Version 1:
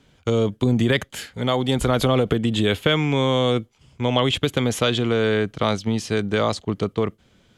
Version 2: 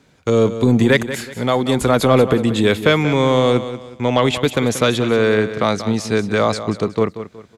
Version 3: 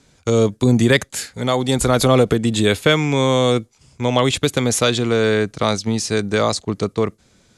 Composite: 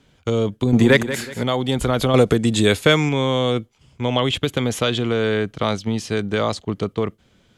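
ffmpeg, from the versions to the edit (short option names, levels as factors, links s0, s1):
-filter_complex "[0:a]asplit=3[s0][s1][s2];[s0]atrim=end=0.732[s3];[1:a]atrim=start=0.728:end=1.432[s4];[s1]atrim=start=1.428:end=2.142[s5];[2:a]atrim=start=2.138:end=3.092[s6];[s2]atrim=start=3.088[s7];[s3][s4]acrossfade=d=0.004:c1=hsin:c2=hsin[s8];[s8][s5]acrossfade=d=0.004:c1=hsin:c2=hsin[s9];[s9][s6]acrossfade=d=0.004:c1=hsin:c2=hsin[s10];[s10][s7]acrossfade=d=0.004:c1=hsin:c2=hsin"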